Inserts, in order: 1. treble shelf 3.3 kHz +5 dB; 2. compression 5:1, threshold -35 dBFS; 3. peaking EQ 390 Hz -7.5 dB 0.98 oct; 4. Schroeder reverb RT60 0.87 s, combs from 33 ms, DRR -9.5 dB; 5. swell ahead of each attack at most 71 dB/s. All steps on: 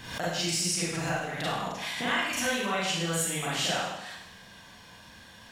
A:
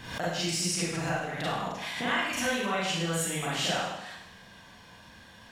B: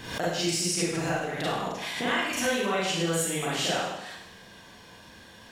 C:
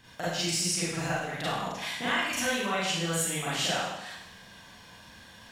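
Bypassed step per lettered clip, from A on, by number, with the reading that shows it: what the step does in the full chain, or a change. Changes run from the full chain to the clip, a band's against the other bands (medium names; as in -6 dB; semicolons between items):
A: 1, 8 kHz band -2.5 dB; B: 3, 500 Hz band +4.0 dB; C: 5, momentary loudness spread change +6 LU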